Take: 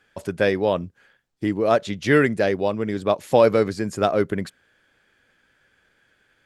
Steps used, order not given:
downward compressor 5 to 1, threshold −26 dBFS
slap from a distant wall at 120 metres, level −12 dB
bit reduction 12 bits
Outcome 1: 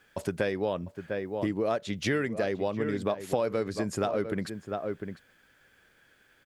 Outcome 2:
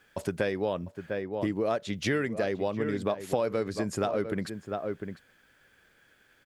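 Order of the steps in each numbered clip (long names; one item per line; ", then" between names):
slap from a distant wall, then bit reduction, then downward compressor
bit reduction, then slap from a distant wall, then downward compressor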